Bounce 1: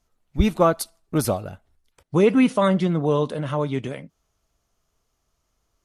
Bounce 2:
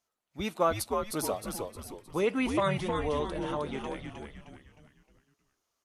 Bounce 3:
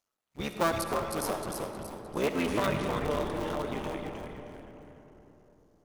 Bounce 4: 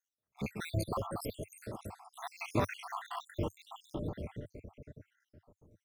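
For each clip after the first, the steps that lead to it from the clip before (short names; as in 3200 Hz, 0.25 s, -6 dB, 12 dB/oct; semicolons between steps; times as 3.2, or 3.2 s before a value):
HPF 580 Hz 6 dB/oct; on a send: frequency-shifting echo 0.31 s, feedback 44%, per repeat -110 Hz, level -4.5 dB; on the sum: gain -6 dB
cycle switcher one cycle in 3, muted; on a send at -5 dB: reverb RT60 3.6 s, pre-delay 30 ms
random spectral dropouts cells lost 73%; bell 97 Hz +13 dB 1.3 oct; gain -2.5 dB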